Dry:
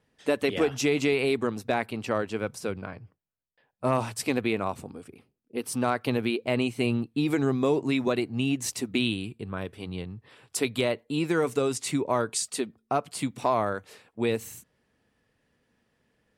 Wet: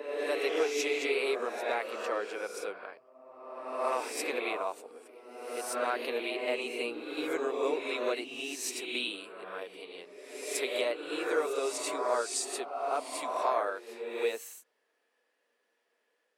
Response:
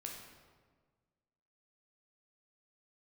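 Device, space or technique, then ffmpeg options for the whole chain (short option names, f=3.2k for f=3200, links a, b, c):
ghost voice: -filter_complex "[0:a]areverse[a];[1:a]atrim=start_sample=2205[b];[a][b]afir=irnorm=-1:irlink=0,areverse,highpass=f=410:w=0.5412,highpass=f=410:w=1.3066"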